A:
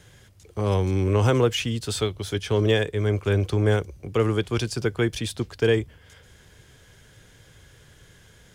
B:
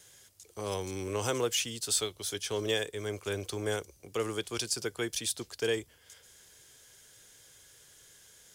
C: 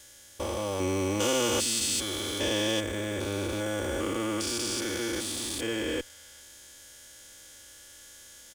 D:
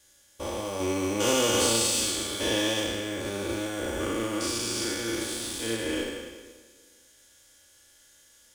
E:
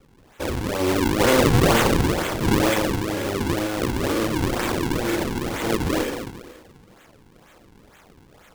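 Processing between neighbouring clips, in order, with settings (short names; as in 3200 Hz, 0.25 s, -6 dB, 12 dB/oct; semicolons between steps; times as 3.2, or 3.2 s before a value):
tone controls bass -11 dB, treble +14 dB; gain -8.5 dB
stepped spectrum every 0.4 s; comb 3.5 ms, depth 87%; in parallel at -11 dB: Schmitt trigger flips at -43.5 dBFS; on the sum: gain +6 dB
spectral trails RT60 2.10 s; flutter echo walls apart 6 m, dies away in 0.33 s; upward expander 1.5:1, over -44 dBFS
decimation with a swept rate 41×, swing 160% 2.1 Hz; gain +7 dB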